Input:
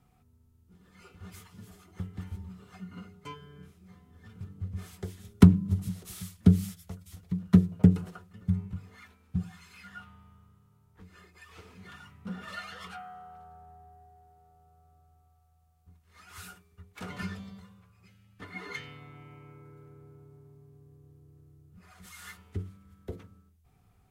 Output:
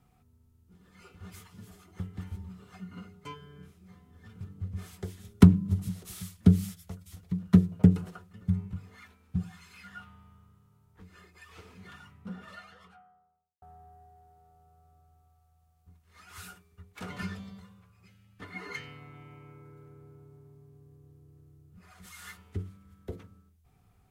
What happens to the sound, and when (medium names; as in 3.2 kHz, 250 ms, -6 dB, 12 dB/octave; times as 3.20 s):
11.69–13.62 s: studio fade out
18.57–19.14 s: band-stop 3.5 kHz, Q 7.9